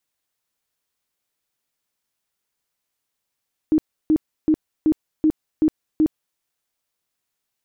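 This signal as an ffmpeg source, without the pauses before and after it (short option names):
-f lavfi -i "aevalsrc='0.237*sin(2*PI*311*mod(t,0.38))*lt(mod(t,0.38),19/311)':d=2.66:s=44100"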